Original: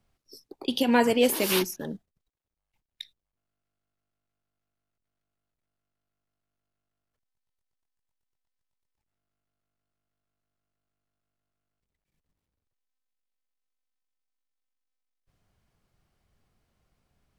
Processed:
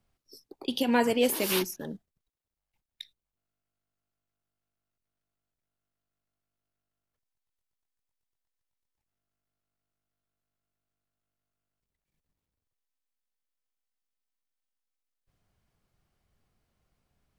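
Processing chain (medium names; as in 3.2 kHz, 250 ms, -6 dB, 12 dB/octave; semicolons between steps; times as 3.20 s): treble shelf 12 kHz +2.5 dB; trim -3 dB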